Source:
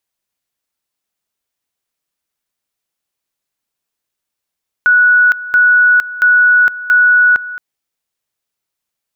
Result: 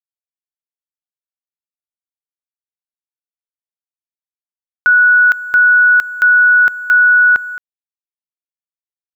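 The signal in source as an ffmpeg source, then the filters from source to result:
-f lavfi -i "aevalsrc='pow(10,(-5.5-16.5*gte(mod(t,0.68),0.46))/20)*sin(2*PI*1470*t)':d=2.72:s=44100"
-af "acrusher=bits=7:mix=0:aa=0.5"

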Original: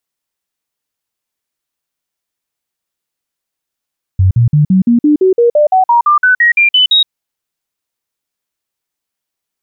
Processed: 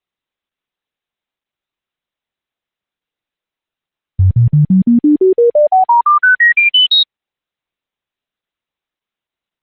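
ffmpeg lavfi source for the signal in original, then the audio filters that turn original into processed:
-f lavfi -i "aevalsrc='0.562*clip(min(mod(t,0.17),0.12-mod(t,0.17))/0.005,0,1)*sin(2*PI*93.9*pow(2,floor(t/0.17)/3)*mod(t,0.17))':d=2.89:s=44100"
-ar 48000 -c:a libopus -b:a 8k

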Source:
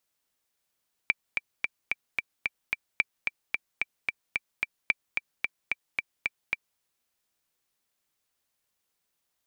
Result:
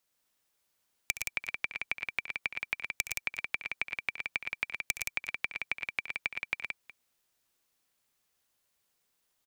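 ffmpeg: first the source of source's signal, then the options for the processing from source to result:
-f lavfi -i "aevalsrc='pow(10,(-9-4.5*gte(mod(t,7*60/221),60/221))/20)*sin(2*PI*2340*mod(t,60/221))*exp(-6.91*mod(t,60/221)/0.03)':d=5.7:s=44100"
-filter_complex "[0:a]acrossover=split=190[s0][s1];[s1]acompressor=threshold=0.0398:ratio=6[s2];[s0][s2]amix=inputs=2:normalize=0,aeval=exprs='(mod(3.98*val(0)+1,2)-1)/3.98':c=same,asplit=2[s3][s4];[s4]aecho=0:1:68|108|116|172|366:0.211|0.168|0.531|0.562|0.112[s5];[s3][s5]amix=inputs=2:normalize=0"

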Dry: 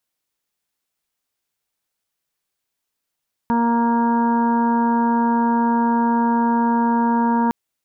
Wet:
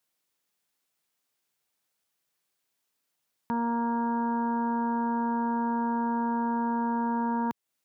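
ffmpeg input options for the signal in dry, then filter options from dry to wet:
-f lavfi -i "aevalsrc='0.141*sin(2*PI*234*t)+0.0376*sin(2*PI*468*t)+0.0224*sin(2*PI*702*t)+0.112*sin(2*PI*936*t)+0.0158*sin(2*PI*1170*t)+0.015*sin(2*PI*1404*t)+0.0168*sin(2*PI*1638*t)':d=4.01:s=44100"
-af "highpass=110,alimiter=limit=0.1:level=0:latency=1:release=280"

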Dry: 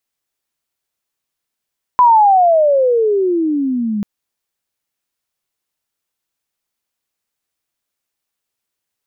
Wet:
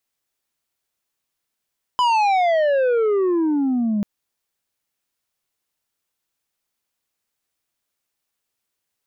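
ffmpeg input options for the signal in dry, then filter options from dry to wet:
-f lavfi -i "aevalsrc='pow(10,(-5-11*t/2.04)/20)*sin(2*PI*1010*2.04/(-28*log(2)/12)*(exp(-28*log(2)/12*t/2.04)-1))':d=2.04:s=44100"
-af "asoftclip=type=tanh:threshold=0.158"

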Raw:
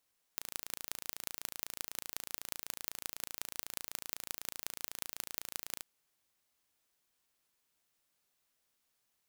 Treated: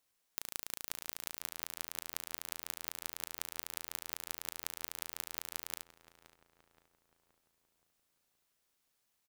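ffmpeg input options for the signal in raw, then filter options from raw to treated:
-f lavfi -i "aevalsrc='0.376*eq(mod(n,1575),0)*(0.5+0.5*eq(mod(n,7875),0))':d=5.44:s=44100"
-filter_complex "[0:a]asplit=2[s0][s1];[s1]adelay=523,lowpass=f=2000:p=1,volume=0.224,asplit=2[s2][s3];[s3]adelay=523,lowpass=f=2000:p=1,volume=0.55,asplit=2[s4][s5];[s5]adelay=523,lowpass=f=2000:p=1,volume=0.55,asplit=2[s6][s7];[s7]adelay=523,lowpass=f=2000:p=1,volume=0.55,asplit=2[s8][s9];[s9]adelay=523,lowpass=f=2000:p=1,volume=0.55,asplit=2[s10][s11];[s11]adelay=523,lowpass=f=2000:p=1,volume=0.55[s12];[s0][s2][s4][s6][s8][s10][s12]amix=inputs=7:normalize=0"

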